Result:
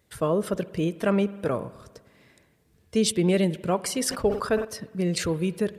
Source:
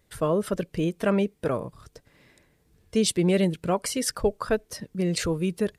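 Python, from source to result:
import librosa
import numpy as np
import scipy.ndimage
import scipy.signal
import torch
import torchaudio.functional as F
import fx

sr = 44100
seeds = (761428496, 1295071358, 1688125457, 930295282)

y = scipy.signal.sosfilt(scipy.signal.butter(2, 57.0, 'highpass', fs=sr, output='sos'), x)
y = fx.rev_spring(y, sr, rt60_s=1.5, pass_ms=(50,), chirp_ms=70, drr_db=17.0)
y = fx.sustainer(y, sr, db_per_s=110.0, at=(3.95, 4.65))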